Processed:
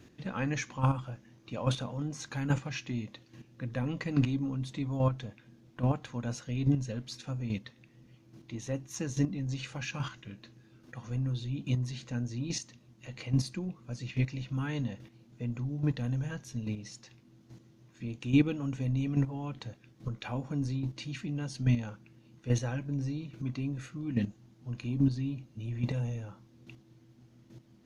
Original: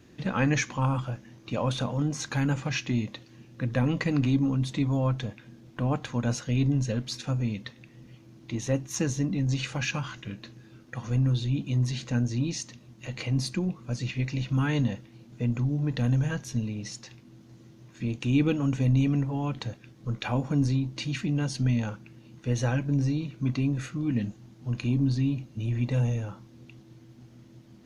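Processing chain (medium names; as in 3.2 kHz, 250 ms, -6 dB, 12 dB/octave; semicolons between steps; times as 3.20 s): square tremolo 1.2 Hz, depth 60%, duty 10%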